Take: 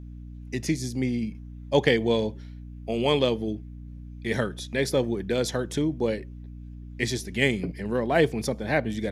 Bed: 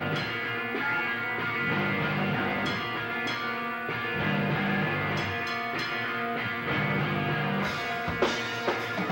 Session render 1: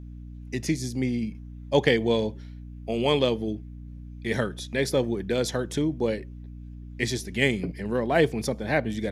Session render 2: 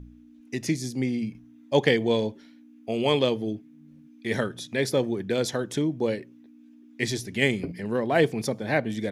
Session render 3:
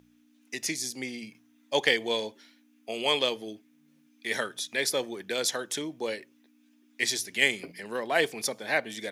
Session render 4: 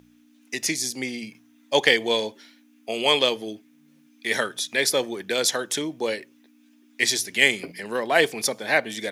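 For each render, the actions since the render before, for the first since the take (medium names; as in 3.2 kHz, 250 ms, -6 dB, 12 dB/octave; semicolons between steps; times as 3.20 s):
no audible change
de-hum 60 Hz, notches 3
high-pass 590 Hz 6 dB/octave; tilt EQ +2 dB/octave
trim +6 dB; peak limiter -2 dBFS, peak gain reduction 1 dB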